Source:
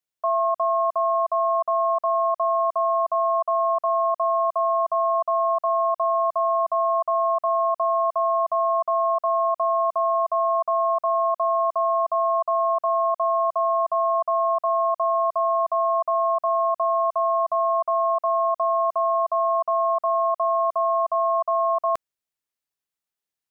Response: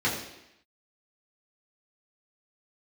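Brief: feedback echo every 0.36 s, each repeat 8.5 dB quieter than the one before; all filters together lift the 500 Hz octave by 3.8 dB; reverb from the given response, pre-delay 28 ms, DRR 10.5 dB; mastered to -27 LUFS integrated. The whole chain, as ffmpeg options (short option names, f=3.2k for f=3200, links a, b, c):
-filter_complex "[0:a]equalizer=f=500:t=o:g=6.5,aecho=1:1:360|720|1080|1440:0.376|0.143|0.0543|0.0206,asplit=2[a][b];[1:a]atrim=start_sample=2205,adelay=28[c];[b][c]afir=irnorm=-1:irlink=0,volume=-22.5dB[d];[a][d]amix=inputs=2:normalize=0,volume=-7.5dB"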